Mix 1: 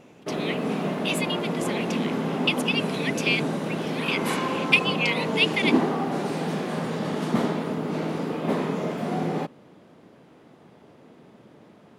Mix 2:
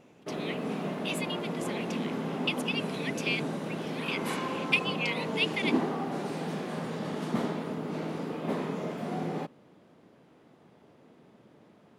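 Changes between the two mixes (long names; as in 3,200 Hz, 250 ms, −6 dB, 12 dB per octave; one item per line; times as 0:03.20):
speech −7.0 dB
background −6.5 dB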